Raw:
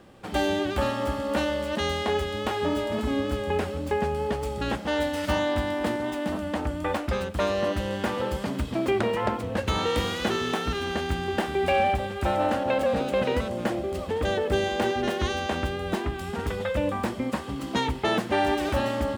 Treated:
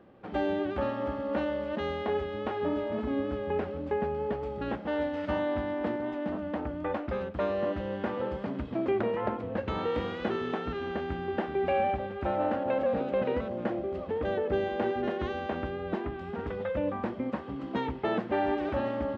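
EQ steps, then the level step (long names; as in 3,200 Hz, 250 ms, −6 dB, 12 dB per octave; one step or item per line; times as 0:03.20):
head-to-tape spacing loss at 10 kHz 42 dB
low-shelf EQ 130 Hz −12 dB
parametric band 930 Hz −2 dB
0.0 dB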